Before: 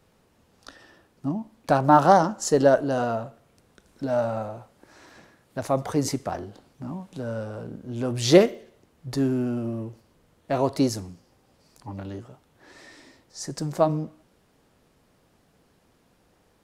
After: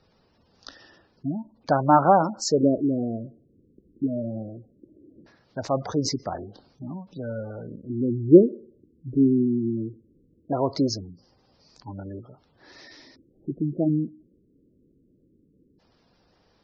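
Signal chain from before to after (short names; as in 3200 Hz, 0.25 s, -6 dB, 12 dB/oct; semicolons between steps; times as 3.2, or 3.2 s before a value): LFO low-pass square 0.19 Hz 320–5100 Hz; spectral gate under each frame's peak -20 dB strong; gain -1 dB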